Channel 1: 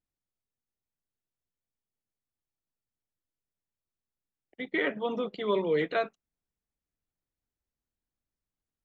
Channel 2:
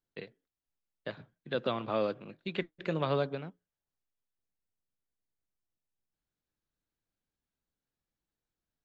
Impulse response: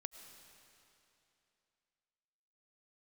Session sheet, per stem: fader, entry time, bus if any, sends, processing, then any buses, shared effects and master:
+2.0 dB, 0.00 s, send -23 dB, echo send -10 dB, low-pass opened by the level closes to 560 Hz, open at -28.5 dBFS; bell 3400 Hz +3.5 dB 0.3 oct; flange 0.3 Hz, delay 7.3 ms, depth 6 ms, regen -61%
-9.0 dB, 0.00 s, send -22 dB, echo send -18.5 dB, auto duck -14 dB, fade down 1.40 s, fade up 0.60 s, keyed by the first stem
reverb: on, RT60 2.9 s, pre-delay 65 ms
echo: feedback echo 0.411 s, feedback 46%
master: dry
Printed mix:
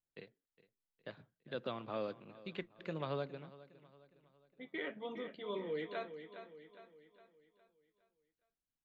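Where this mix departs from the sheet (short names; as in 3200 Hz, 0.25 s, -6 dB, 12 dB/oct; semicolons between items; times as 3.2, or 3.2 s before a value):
stem 1 +2.0 dB -> -9.5 dB; stem 2: send off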